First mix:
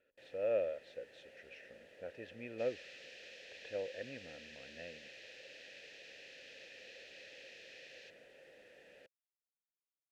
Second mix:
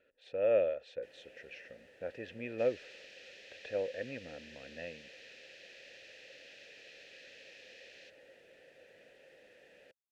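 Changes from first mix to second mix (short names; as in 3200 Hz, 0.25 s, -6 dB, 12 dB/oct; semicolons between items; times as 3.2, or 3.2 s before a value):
speech +5.5 dB; first sound: entry +0.85 s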